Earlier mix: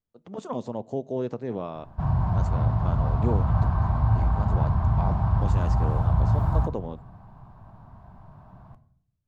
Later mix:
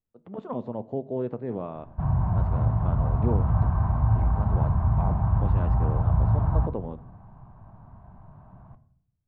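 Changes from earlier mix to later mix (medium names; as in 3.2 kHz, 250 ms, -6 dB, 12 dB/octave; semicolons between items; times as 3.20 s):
speech: send +6.0 dB; master: add distance through air 500 m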